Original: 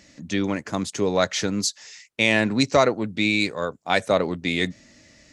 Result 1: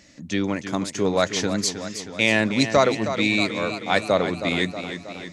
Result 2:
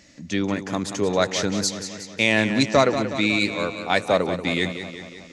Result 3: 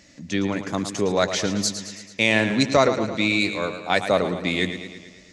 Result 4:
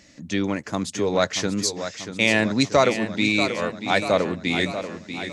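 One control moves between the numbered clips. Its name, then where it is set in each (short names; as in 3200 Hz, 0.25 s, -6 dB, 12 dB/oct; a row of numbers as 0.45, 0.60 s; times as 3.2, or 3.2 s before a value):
warbling echo, time: 0.317, 0.183, 0.11, 0.637 s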